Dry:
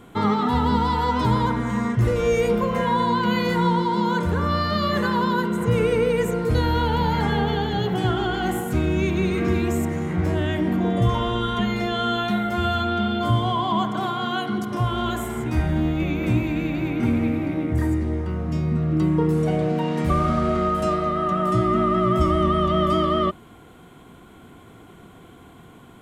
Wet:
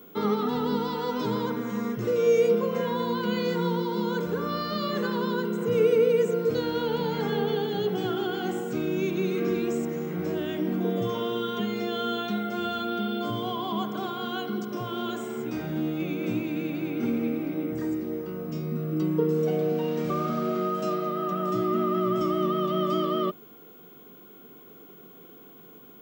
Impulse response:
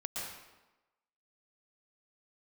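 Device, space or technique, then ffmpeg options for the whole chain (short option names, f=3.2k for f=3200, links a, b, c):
old television with a line whistle: -filter_complex "[0:a]asettb=1/sr,asplit=3[a][b][c];[a]atrim=end=0.504[d];[b]atrim=start=0.5:end=1.04,asetpts=PTS-STARTPTS,afade=t=in:d=0.004:c=qsin,afade=t=out:st=0.536:d=0.004:c=qsin,lowpass=f=8.9k:w=0.5412,lowpass=f=8.9k:w=1.3066[e];[c]atrim=start=1.036[f];[d][e]acrossfade=d=0.004:c1=hsin:c2=qsin[g];[g][f]acrossfade=d=0.004:c1=qsin:c2=hsin,highpass=f=160:w=0.5412,highpass=f=160:w=1.3066,equalizer=f=440:t=q:w=4:g=8,equalizer=f=670:t=q:w=4:g=-3,equalizer=f=950:t=q:w=4:g=-6,equalizer=f=1.9k:t=q:w=4:g=-6,equalizer=f=5.6k:t=q:w=4:g=4,lowpass=f=7.7k:w=0.5412,lowpass=f=7.7k:w=1.3066,aeval=exprs='val(0)+0.00631*sin(2*PI*15625*n/s)':c=same,volume=-5.5dB"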